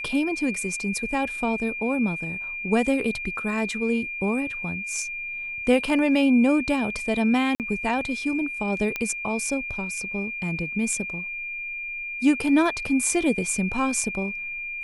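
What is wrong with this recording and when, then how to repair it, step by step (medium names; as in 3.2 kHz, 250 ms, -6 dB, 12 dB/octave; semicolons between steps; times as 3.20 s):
whine 2.4 kHz -30 dBFS
7.55–7.60 s: dropout 48 ms
8.96 s: pop -13 dBFS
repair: de-click; band-stop 2.4 kHz, Q 30; interpolate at 7.55 s, 48 ms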